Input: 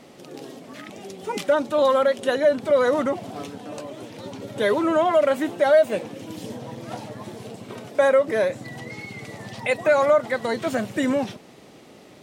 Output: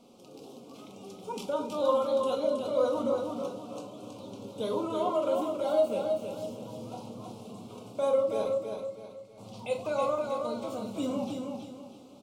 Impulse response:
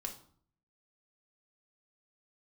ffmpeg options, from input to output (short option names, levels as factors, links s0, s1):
-filter_complex "[0:a]asettb=1/sr,asplit=3[s0][s1][s2];[s0]atrim=end=8.444[s3];[s1]atrim=start=8.44:end=9.38,asetpts=PTS-STARTPTS,afade=t=in:d=0.004:c=qsin,afade=t=out:st=0.936:d=0.004:c=qsin,agate=range=0.0224:threshold=0.0501:ratio=3:detection=peak[s4];[s2]atrim=start=9.376[s5];[s3][s4]acrossfade=d=0.004:c1=hsin:c2=qsin[s6];[s6][s5]acrossfade=d=0.004:c1=qsin:c2=hsin,asettb=1/sr,asplit=3[s7][s8][s9];[s7]atrim=end=10.254[s10];[s8]atrim=start=10.25:end=10.86,asetpts=PTS-STARTPTS,afade=t=in:d=0.004:c=qsin,afade=t=out:st=0.606:d=0.004:c=qsin,acompressor=threshold=0.0631:ratio=6[s11];[s9]atrim=start=10.856[s12];[s10][s11]acrossfade=d=0.004:c1=hsin:c2=qsin[s13];[s13][s12]acrossfade=d=0.004:c1=qsin:c2=hsin,asuperstop=centerf=1800:order=4:qfactor=1.4,aecho=1:1:321|642|963|1284:0.562|0.197|0.0689|0.0241[s14];[1:a]atrim=start_sample=2205[s15];[s14][s15]afir=irnorm=-1:irlink=0,volume=0.398"